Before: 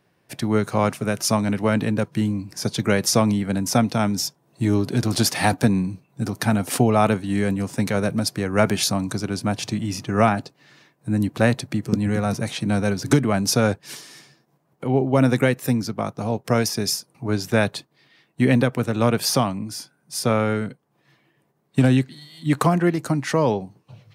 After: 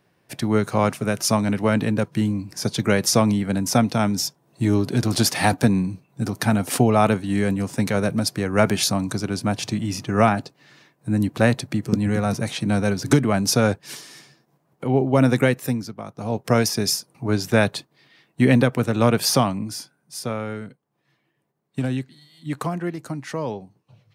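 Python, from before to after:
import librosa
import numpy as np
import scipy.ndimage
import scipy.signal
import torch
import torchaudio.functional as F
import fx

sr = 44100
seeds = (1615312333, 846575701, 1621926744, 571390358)

y = fx.gain(x, sr, db=fx.line((15.56, 0.5), (16.04, -9.5), (16.39, 1.5), (19.69, 1.5), (20.35, -8.0)))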